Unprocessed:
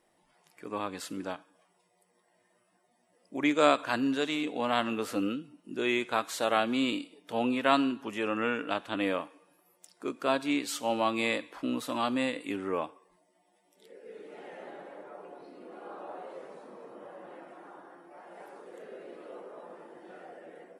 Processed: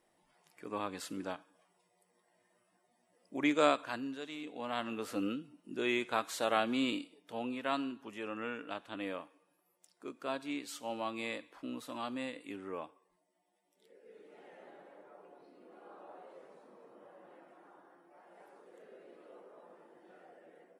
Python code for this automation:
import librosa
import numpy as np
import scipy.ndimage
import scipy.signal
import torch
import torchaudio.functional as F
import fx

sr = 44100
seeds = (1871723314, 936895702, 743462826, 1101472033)

y = fx.gain(x, sr, db=fx.line((3.59, -3.5), (4.2, -14.0), (5.32, -4.0), (6.97, -4.0), (7.43, -10.0)))